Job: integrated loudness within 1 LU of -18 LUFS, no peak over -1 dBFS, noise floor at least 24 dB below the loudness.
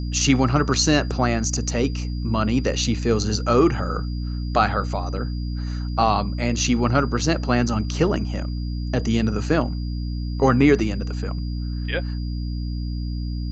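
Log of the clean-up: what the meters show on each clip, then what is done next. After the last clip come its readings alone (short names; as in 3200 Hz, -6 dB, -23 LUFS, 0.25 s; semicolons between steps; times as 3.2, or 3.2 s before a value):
hum 60 Hz; harmonics up to 300 Hz; hum level -24 dBFS; steady tone 4800 Hz; tone level -44 dBFS; loudness -22.5 LUFS; peak -4.0 dBFS; loudness target -18.0 LUFS
-> notches 60/120/180/240/300 Hz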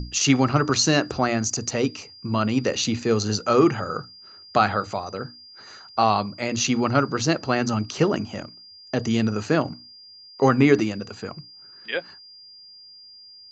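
hum none; steady tone 4800 Hz; tone level -44 dBFS
-> notch 4800 Hz, Q 30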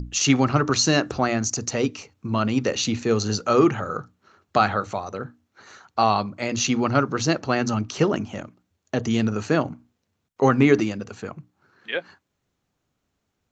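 steady tone none; loudness -22.5 LUFS; peak -4.0 dBFS; loudness target -18.0 LUFS
-> gain +4.5 dB; limiter -1 dBFS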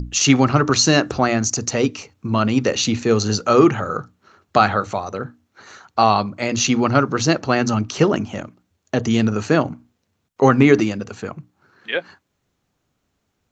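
loudness -18.5 LUFS; peak -1.0 dBFS; noise floor -72 dBFS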